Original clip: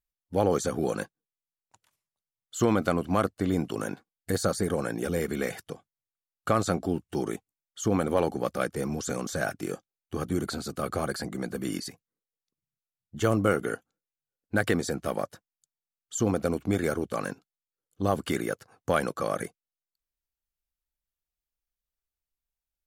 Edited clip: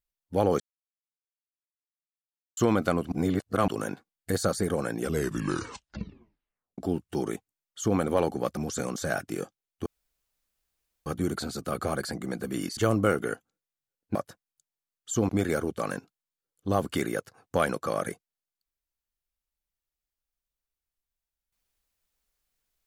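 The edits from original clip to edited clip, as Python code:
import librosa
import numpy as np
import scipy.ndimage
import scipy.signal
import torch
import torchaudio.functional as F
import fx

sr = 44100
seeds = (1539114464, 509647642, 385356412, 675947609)

y = fx.edit(x, sr, fx.silence(start_s=0.6, length_s=1.97),
    fx.reverse_span(start_s=3.12, length_s=0.56),
    fx.tape_stop(start_s=4.99, length_s=1.79),
    fx.cut(start_s=8.57, length_s=0.31),
    fx.insert_room_tone(at_s=10.17, length_s=1.2),
    fx.cut(start_s=11.88, length_s=1.3),
    fx.cut(start_s=14.56, length_s=0.63),
    fx.cut(start_s=16.33, length_s=0.3), tone=tone)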